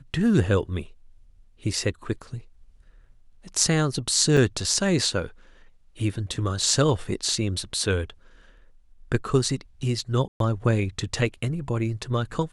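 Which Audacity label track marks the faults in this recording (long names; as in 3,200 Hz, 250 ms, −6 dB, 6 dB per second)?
4.370000	4.370000	drop-out 3.4 ms
10.280000	10.400000	drop-out 122 ms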